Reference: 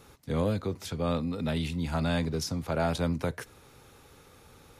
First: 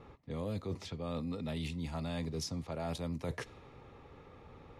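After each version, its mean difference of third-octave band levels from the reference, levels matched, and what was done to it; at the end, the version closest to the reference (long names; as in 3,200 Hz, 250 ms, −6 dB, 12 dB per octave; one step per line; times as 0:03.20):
4.5 dB: notch filter 1,500 Hz, Q 5.4
low-pass that shuts in the quiet parts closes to 1,800 Hz, open at −25.5 dBFS
reversed playback
downward compressor 6 to 1, threshold −37 dBFS, peak gain reduction 13 dB
reversed playback
level +1.5 dB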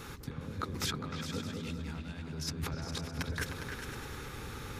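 11.5 dB: graphic EQ with 15 bands 630 Hz −8 dB, 1,600 Hz +4 dB, 10,000 Hz −4 dB
compressor whose output falls as the input rises −42 dBFS, ratio −1
echo whose low-pass opens from repeat to repeat 102 ms, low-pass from 200 Hz, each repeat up 2 octaves, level 0 dB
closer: first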